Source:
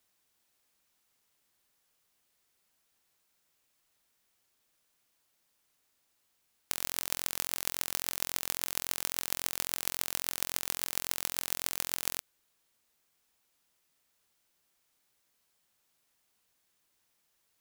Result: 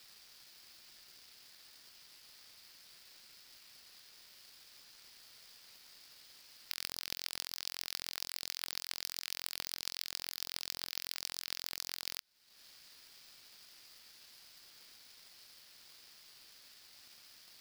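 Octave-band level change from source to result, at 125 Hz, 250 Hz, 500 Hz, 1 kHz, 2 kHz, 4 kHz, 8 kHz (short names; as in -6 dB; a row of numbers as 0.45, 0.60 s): -10.5, -10.5, -10.5, -9.5, -5.5, -0.5, -9.0 dB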